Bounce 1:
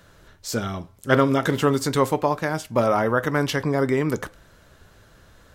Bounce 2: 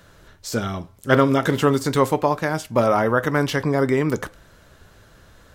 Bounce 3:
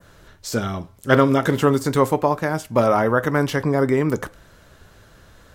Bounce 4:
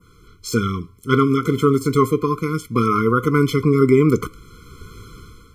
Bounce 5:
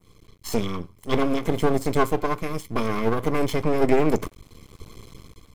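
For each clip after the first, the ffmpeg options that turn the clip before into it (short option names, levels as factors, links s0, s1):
-af "deesser=0.55,volume=1.26"
-af "adynamicequalizer=threshold=0.0112:dfrequency=3700:dqfactor=0.7:tfrequency=3700:tqfactor=0.7:attack=5:release=100:ratio=0.375:range=2.5:mode=cutabove:tftype=bell,volume=1.12"
-af "dynaudnorm=f=200:g=5:m=3.98,afftfilt=real='re*eq(mod(floor(b*sr/1024/500),2),0)':imag='im*eq(mod(floor(b*sr/1024/500),2),0)':win_size=1024:overlap=0.75"
-af "asuperstop=centerf=1400:order=12:qfactor=2.9,aeval=exprs='max(val(0),0)':c=same"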